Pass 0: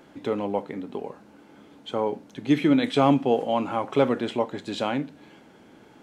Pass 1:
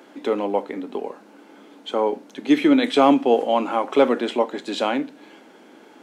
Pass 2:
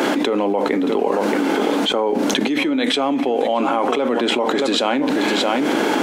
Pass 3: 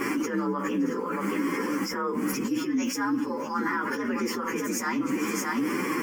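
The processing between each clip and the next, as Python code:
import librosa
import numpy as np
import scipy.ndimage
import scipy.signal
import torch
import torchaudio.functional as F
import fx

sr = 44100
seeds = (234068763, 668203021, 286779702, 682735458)

y1 = scipy.signal.sosfilt(scipy.signal.butter(4, 240.0, 'highpass', fs=sr, output='sos'), x)
y1 = F.gain(torch.from_numpy(y1), 5.0).numpy()
y2 = y1 + 10.0 ** (-17.5 / 20.0) * np.pad(y1, (int(625 * sr / 1000.0), 0))[:len(y1)]
y2 = fx.env_flatten(y2, sr, amount_pct=100)
y2 = F.gain(torch.from_numpy(y2), -7.5).numpy()
y3 = fx.partial_stretch(y2, sr, pct=119)
y3 = fx.fixed_phaser(y3, sr, hz=1600.0, stages=4)
y3 = F.gain(torch.from_numpy(y3), -2.0).numpy()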